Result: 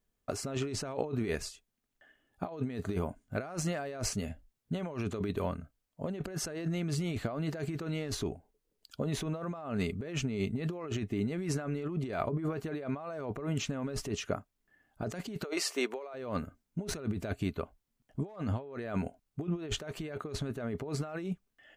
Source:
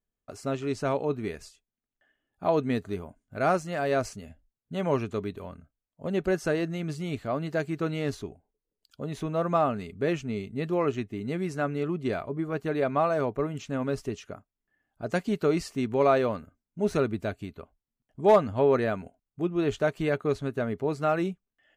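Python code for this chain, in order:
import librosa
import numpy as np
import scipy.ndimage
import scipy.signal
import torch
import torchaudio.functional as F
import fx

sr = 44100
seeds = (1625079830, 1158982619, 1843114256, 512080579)

y = fx.highpass(x, sr, hz=400.0, slope=24, at=(15.43, 16.13), fade=0.02)
y = fx.over_compress(y, sr, threshold_db=-36.0, ratio=-1.0)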